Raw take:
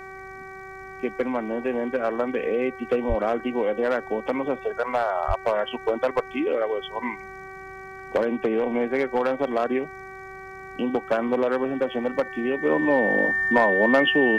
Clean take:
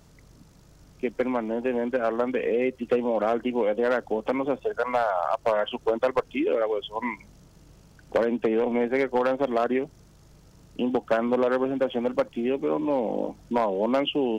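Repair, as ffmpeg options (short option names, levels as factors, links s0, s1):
-filter_complex "[0:a]bandreject=f=382.2:t=h:w=4,bandreject=f=764.4:t=h:w=4,bandreject=f=1146.6:t=h:w=4,bandreject=f=1528.8:t=h:w=4,bandreject=f=1911:t=h:w=4,bandreject=f=2293.2:t=h:w=4,bandreject=f=1800:w=30,asplit=3[s0][s1][s2];[s0]afade=t=out:st=3.08:d=0.02[s3];[s1]highpass=f=140:w=0.5412,highpass=f=140:w=1.3066,afade=t=in:st=3.08:d=0.02,afade=t=out:st=3.2:d=0.02[s4];[s2]afade=t=in:st=3.2:d=0.02[s5];[s3][s4][s5]amix=inputs=3:normalize=0,asplit=3[s6][s7][s8];[s6]afade=t=out:st=5.27:d=0.02[s9];[s7]highpass=f=140:w=0.5412,highpass=f=140:w=1.3066,afade=t=in:st=5.27:d=0.02,afade=t=out:st=5.39:d=0.02[s10];[s8]afade=t=in:st=5.39:d=0.02[s11];[s9][s10][s11]amix=inputs=3:normalize=0,asetnsamples=n=441:p=0,asendcmd='12.65 volume volume -4dB',volume=1"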